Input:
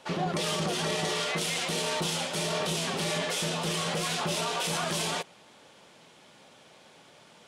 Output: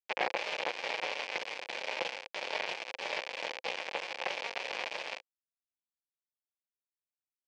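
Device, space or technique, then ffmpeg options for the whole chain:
hand-held game console: -af "acrusher=bits=3:mix=0:aa=0.000001,highpass=490,equalizer=f=520:t=q:w=4:g=10,equalizer=f=840:t=q:w=4:g=5,equalizer=f=1300:t=q:w=4:g=-7,equalizer=f=2400:t=q:w=4:g=7,equalizer=f=3800:t=q:w=4:g=-5,lowpass=f=4300:w=0.5412,lowpass=f=4300:w=1.3066,volume=0.794"

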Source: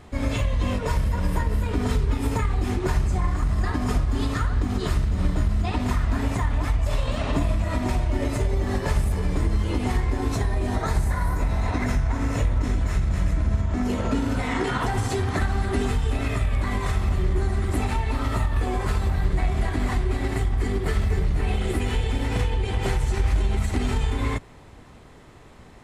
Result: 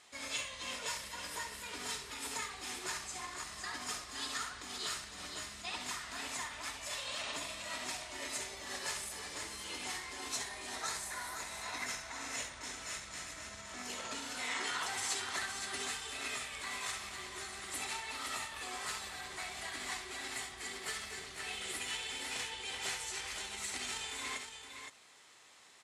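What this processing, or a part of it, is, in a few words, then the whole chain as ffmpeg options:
piezo pickup straight into a mixer: -af "lowpass=7600,aderivative,lowshelf=f=230:g=-4.5,aecho=1:1:68|516:0.335|0.422,volume=1.58"

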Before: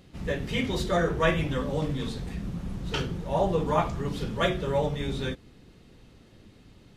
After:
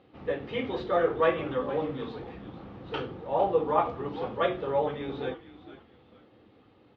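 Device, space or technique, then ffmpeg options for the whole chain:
frequency-shifting delay pedal into a guitar cabinet: -filter_complex "[0:a]asplit=4[s0][s1][s2][s3];[s1]adelay=456,afreqshift=-110,volume=0.2[s4];[s2]adelay=912,afreqshift=-220,volume=0.0676[s5];[s3]adelay=1368,afreqshift=-330,volume=0.0232[s6];[s0][s4][s5][s6]amix=inputs=4:normalize=0,highpass=110,equalizer=f=170:t=q:w=4:g=-9,equalizer=f=310:t=q:w=4:g=6,equalizer=f=490:t=q:w=4:g=9,equalizer=f=790:t=q:w=4:g=9,equalizer=f=1200:t=q:w=4:g=7,lowpass=f=3600:w=0.5412,lowpass=f=3600:w=1.3066,volume=0.501"

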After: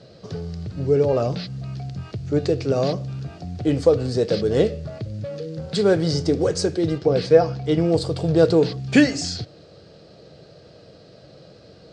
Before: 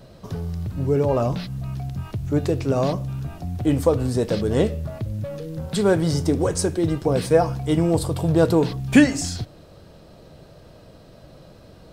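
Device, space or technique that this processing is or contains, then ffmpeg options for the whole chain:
car door speaker: -filter_complex "[0:a]highpass=100,equalizer=f=240:t=q:w=4:g=-4,equalizer=f=460:t=q:w=4:g=5,equalizer=f=980:t=q:w=4:g=-9,equalizer=f=4600:t=q:w=4:g=8,lowpass=f=7100:w=0.5412,lowpass=f=7100:w=1.3066,asettb=1/sr,asplit=3[s0][s1][s2];[s0]atrim=end=6.984[s3];[s1]atrim=start=6.98:end=7.92,asetpts=PTS-STARTPTS,afade=t=in:d=0.004:c=qsin,afade=t=out:st=0.936:d=0.004:c=qsin,lowpass=5700[s4];[s2]atrim=start=7.916[s5];[s3][s4]acrossfade=d=0.004:c1=hsin:c2=qsin[s6];[s6][s5]acrossfade=d=0.004:c1=qsin:c2=hsin"

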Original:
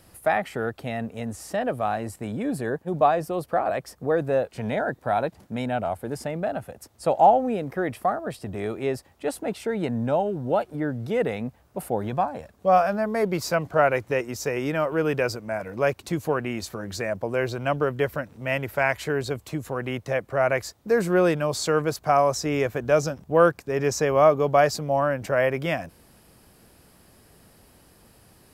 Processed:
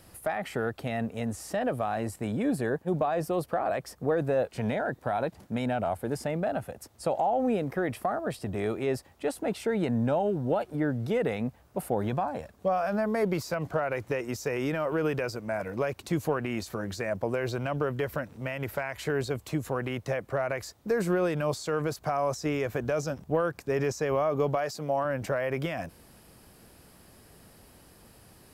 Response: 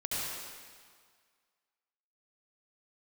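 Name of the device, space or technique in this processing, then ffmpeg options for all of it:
de-esser from a sidechain: -filter_complex "[0:a]asplit=2[s0][s1];[s1]highpass=f=4900:p=1,apad=whole_len=1258509[s2];[s0][s2]sidechaincompress=threshold=0.0126:ratio=8:attack=1.6:release=75,asettb=1/sr,asplit=3[s3][s4][s5];[s3]atrim=end=24.554[s6];[s4]atrim=start=24.55:end=25.05,asetpts=PTS-STARTPTS,afade=t=in:d=0.004:c=qsin,afade=t=out:st=0.496:d=0.004:c=qsin,highpass=f=230:p=1[s7];[s5]atrim=start=25.046[s8];[s6][s7]acrossfade=d=0.004:c1=hsin:c2=qsin[s9];[s9][s8]acrossfade=d=0.004:c1=qsin:c2=hsin"

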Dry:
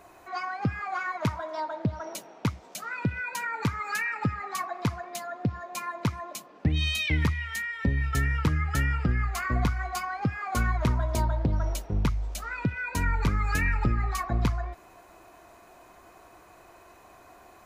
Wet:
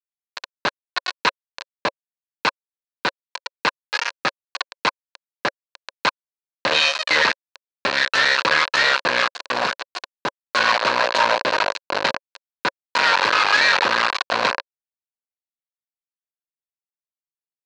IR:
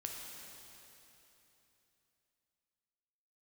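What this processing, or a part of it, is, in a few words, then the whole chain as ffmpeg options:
hand-held game console: -filter_complex "[0:a]acrusher=bits=3:mix=0:aa=0.000001,highpass=480,equalizer=f=550:t=q:w=4:g=9,equalizer=f=1000:t=q:w=4:g=9,equalizer=f=1600:t=q:w=4:g=9,equalizer=f=2600:t=q:w=4:g=6,equalizer=f=4200:t=q:w=4:g=9,lowpass=f=5600:w=0.5412,lowpass=f=5600:w=1.3066,asettb=1/sr,asplit=3[s0][s1][s2];[s0]atrim=end=9.274[s3];[s1]atrim=start=9.27:end=10.44,asetpts=PTS-STARTPTS,afade=t=in:d=0.004:c=qsin,afade=t=out:st=1.166:d=0.004:c=qsin,equalizer=f=2600:w=0.48:g=-4.5[s4];[s2]atrim=start=10.436[s5];[s3][s4]acrossfade=d=0.004:c1=hsin:c2=qsin[s6];[s6][s5]acrossfade=d=0.004:c1=qsin:c2=hsin,volume=1.68"

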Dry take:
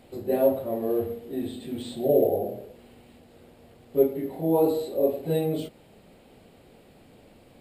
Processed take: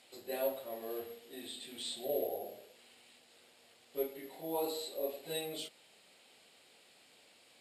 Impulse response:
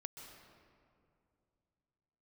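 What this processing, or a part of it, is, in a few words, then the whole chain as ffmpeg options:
piezo pickup straight into a mixer: -af "lowpass=6200,aderivative,volume=2.66"

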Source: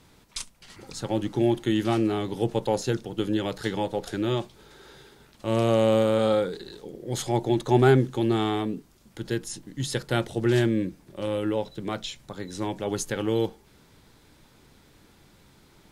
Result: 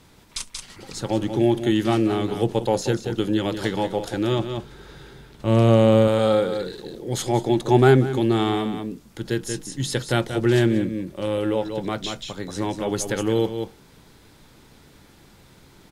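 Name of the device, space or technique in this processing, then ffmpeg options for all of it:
ducked delay: -filter_complex "[0:a]asettb=1/sr,asplit=3[s0][s1][s2];[s0]atrim=end=4.394[s3];[s1]atrim=start=4.39:end=6.08,asetpts=PTS-STARTPTS,afade=t=in:d=0.004:c=qsin,afade=t=out:st=1.686:d=0.004:c=qsin,bass=f=250:g=7,treble=f=4000:g=-4[s4];[s2]atrim=start=6.076[s5];[s3][s4]acrossfade=d=0.004:c1=hsin:c2=qsin[s6];[s6][s5]acrossfade=d=0.004:c1=qsin:c2=hsin,asplit=3[s7][s8][s9];[s8]adelay=183,volume=0.631[s10];[s9]apad=whole_len=709945[s11];[s10][s11]sidechaincompress=threshold=0.0355:ratio=8:attack=11:release=283[s12];[s7][s12]amix=inputs=2:normalize=0,volume=1.5"

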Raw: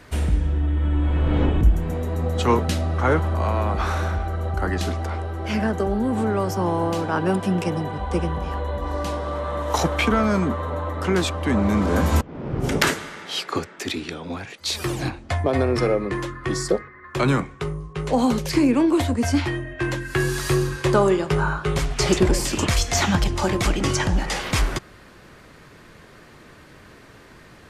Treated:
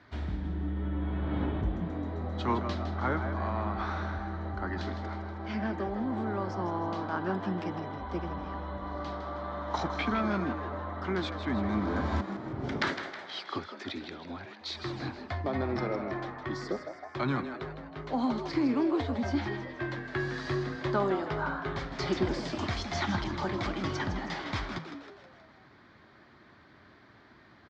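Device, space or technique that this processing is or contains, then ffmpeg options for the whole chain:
frequency-shifting delay pedal into a guitar cabinet: -filter_complex "[0:a]lowpass=f=9100:w=0.5412,lowpass=f=9100:w=1.3066,asplit=7[s0][s1][s2][s3][s4][s5][s6];[s1]adelay=159,afreqshift=120,volume=0.335[s7];[s2]adelay=318,afreqshift=240,volume=0.174[s8];[s3]adelay=477,afreqshift=360,volume=0.0902[s9];[s4]adelay=636,afreqshift=480,volume=0.0473[s10];[s5]adelay=795,afreqshift=600,volume=0.0245[s11];[s6]adelay=954,afreqshift=720,volume=0.0127[s12];[s0][s7][s8][s9][s10][s11][s12]amix=inputs=7:normalize=0,highpass=84,equalizer=f=160:t=q:w=4:g=-7,equalizer=f=480:t=q:w=4:g=-10,equalizer=f=2700:t=q:w=4:g=-9,lowpass=f=4400:w=0.5412,lowpass=f=4400:w=1.3066,volume=0.376"

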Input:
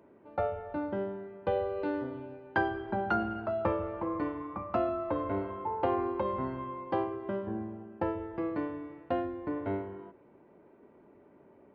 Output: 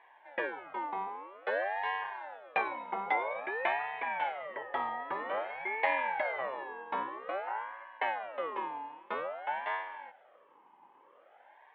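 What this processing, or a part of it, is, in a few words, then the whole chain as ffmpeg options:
voice changer toy: -filter_complex "[0:a]aeval=exprs='val(0)*sin(2*PI*960*n/s+960*0.4/0.51*sin(2*PI*0.51*n/s))':c=same,highpass=480,equalizer=f=570:t=q:w=4:g=7,equalizer=f=850:t=q:w=4:g=7,equalizer=f=1400:t=q:w=4:g=-8,equalizer=f=2200:t=q:w=4:g=3,equalizer=f=3200:t=q:w=4:g=6,lowpass=f=3900:w=0.5412,lowpass=f=3900:w=1.3066,asettb=1/sr,asplit=3[s0][s1][s2];[s0]atrim=end=1.074[s3];[s1]atrim=start=1.07:end=1.76,asetpts=PTS-STARTPTS,afade=t=in:d=0.004:c=qsin,afade=t=out:st=0.686:d=0.004:c=qsin,highpass=f=260:w=0.5412,highpass=f=260:w=1.3066[s4];[s2]atrim=start=1.756[s5];[s3][s4]acrossfade=d=0.004:c1=hsin:c2=qsin[s6];[s6][s5]acrossfade=d=0.004:c1=qsin:c2=hsin"

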